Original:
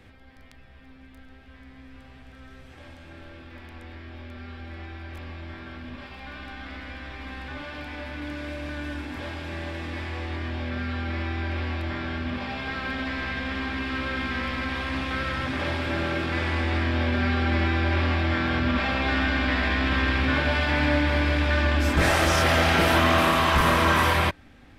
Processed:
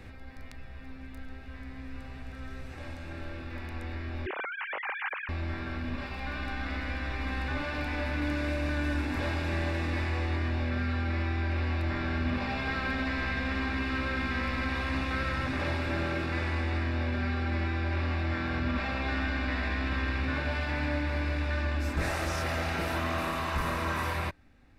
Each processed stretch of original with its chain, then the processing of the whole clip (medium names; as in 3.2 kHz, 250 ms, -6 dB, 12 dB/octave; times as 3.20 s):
4.26–5.29 s: formants replaced by sine waves + high-pass 230 Hz
whole clip: bass shelf 66 Hz +7 dB; band-stop 3.2 kHz, Q 7.7; gain riding; trim -7 dB